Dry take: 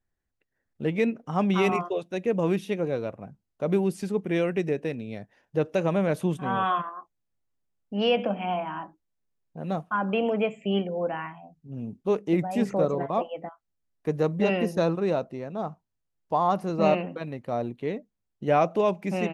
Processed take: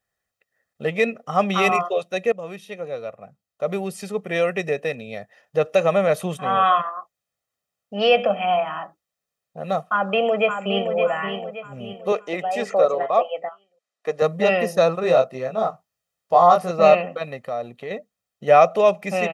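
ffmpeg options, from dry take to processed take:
-filter_complex "[0:a]asplit=2[a][b];[b]afade=t=in:st=9.87:d=0.01,afade=t=out:st=10.93:d=0.01,aecho=0:1:570|1140|1710|2280|2850:0.446684|0.178673|0.0714694|0.0285877|0.0114351[c];[a][c]amix=inputs=2:normalize=0,asettb=1/sr,asplit=3[d][e][f];[d]atrim=end=12.124[g];[e]atrim=start=12.12:end=14.22,asetpts=PTS-STARTPTS,afade=t=in:d=0.004:c=qsin,afade=t=out:st=2.096:d=0.004:c=qsin,highpass=310,lowpass=7.4k[h];[f]atrim=start=14.216[i];[g][h]acrossfade=d=0.004:c1=hsin:c2=qsin[j];[j][i]acrossfade=d=0.004:c1=qsin:c2=hsin,asettb=1/sr,asplit=3[k][l][m];[k]atrim=end=15.014[n];[l]atrim=start=15.01:end=16.71,asetpts=PTS-STARTPTS,afade=t=in:d=0.004:c=qsin,afade=t=out:st=1.696:d=0.004:c=qsin,asplit=2[o][p];[p]adelay=23,volume=-2.5dB[q];[o][q]amix=inputs=2:normalize=0,atrim=end_sample=74970[r];[m]atrim=start=16.706[s];[n][r]acrossfade=d=0.004:c1=hsin:c2=qsin[t];[t][s]acrossfade=d=0.004:c1=qsin:c2=hsin,asettb=1/sr,asplit=3[u][v][w];[u]atrim=end=17.464[x];[v]atrim=start=17.46:end=17.91,asetpts=PTS-STARTPTS,afade=t=in:d=0.004:c=qsin,afade=t=out:st=0.446:d=0.004:c=qsin,acompressor=threshold=-32dB:ratio=3:attack=3.2:release=140:knee=1:detection=peak[y];[w]atrim=start=17.906[z];[x][y]acrossfade=d=0.004:c1=hsin:c2=qsin[aa];[aa][z]acrossfade=d=0.004:c1=qsin:c2=hsin,asplit=2[ab][ac];[ab]atrim=end=2.32,asetpts=PTS-STARTPTS,afade=t=out:st=2.316:d=0.004:c=hsin:silence=0.199526[ad];[ac]atrim=start=2.32,asetpts=PTS-STARTPTS,afade=t=in:d=2.36:silence=0.199526[ae];[ad][ae]concat=n=2:v=0:a=1,highpass=f=490:p=1,aecho=1:1:1.6:0.66,volume=7.5dB"

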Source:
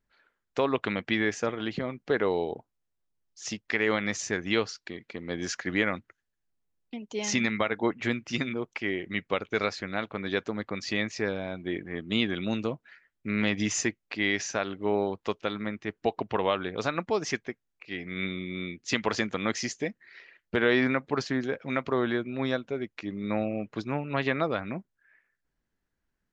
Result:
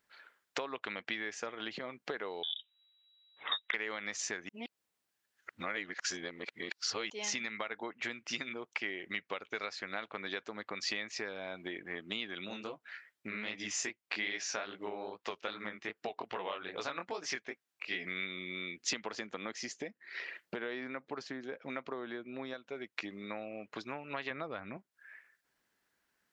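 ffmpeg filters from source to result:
-filter_complex "[0:a]asettb=1/sr,asplit=3[a][b][c];[a]atrim=end=2.434[d];[b]atrim=start=2.43:end=3.74,asetpts=PTS-STARTPTS,afade=t=in:d=0.004:c=qsin,afade=t=out:st=1.306:d=0.004:c=qsin,lowpass=f=3.3k:t=q:w=0.5098,lowpass=f=3.3k:t=q:w=0.6013,lowpass=f=3.3k:t=q:w=0.9,lowpass=f=3.3k:t=q:w=2.563,afreqshift=-3900[e];[c]atrim=start=3.736[f];[d][e]acrossfade=d=0.004:c1=hsin:c2=qsin[g];[g][f]acrossfade=d=0.004:c1=qsin:c2=hsin,asplit=3[h][i][j];[h]afade=t=out:st=12.46:d=0.02[k];[i]flanger=delay=16:depth=7.7:speed=2.5,afade=t=in:st=12.46:d=0.02,afade=t=out:st=18.05:d=0.02[l];[j]afade=t=in:st=18.05:d=0.02[m];[k][l][m]amix=inputs=3:normalize=0,asettb=1/sr,asplit=3[n][o][p];[n]atrim=end=18.894[q];[o]atrim=start=18.89:end=22.54,asetpts=PTS-STARTPTS,afade=t=in:d=0.004:c=qsin,afade=t=out:st=3.646:d=0.004:c=qsin,equalizer=f=250:w=0.36:g=7.5[r];[p]atrim=start=22.536[s];[q][r]acrossfade=d=0.004:c1=hsin:c2=qsin[t];[t][s]acrossfade=d=0.004:c1=qsin:c2=hsin,asettb=1/sr,asplit=3[u][v][w];[u]atrim=end=24.304[x];[v]atrim=start=24.3:end=24.77,asetpts=PTS-STARTPTS,afade=t=in:d=0.004:c=qsin,afade=t=out:st=0.466:d=0.004:c=qsin,aemphasis=mode=reproduction:type=bsi[y];[w]atrim=start=24.766[z];[x][y]acrossfade=d=0.004:c1=hsin:c2=qsin[aa];[aa][z]acrossfade=d=0.004:c1=qsin:c2=hsin,asplit=3[ab][ac][ad];[ab]atrim=end=4.492[ae];[ac]atrim=start=4.488:end=7.102,asetpts=PTS-STARTPTS,areverse[af];[ad]atrim=start=7.098[ag];[ae][af]acrossfade=d=0.004:c1=hsin:c2=hsin[ah];[ah][ag]acrossfade=d=0.004:c1=hsin:c2=hsin,acompressor=threshold=-40dB:ratio=16,highpass=f=830:p=1,equalizer=f=6.4k:t=o:w=0.22:g=-2,volume=9.5dB"

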